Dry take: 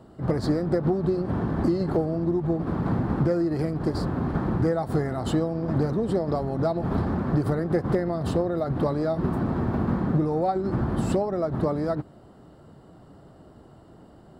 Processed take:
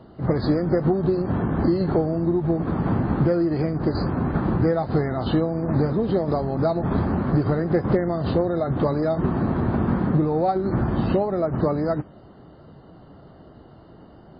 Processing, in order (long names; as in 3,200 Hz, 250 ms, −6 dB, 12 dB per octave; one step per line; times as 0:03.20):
level +3.5 dB
MP3 16 kbit/s 11,025 Hz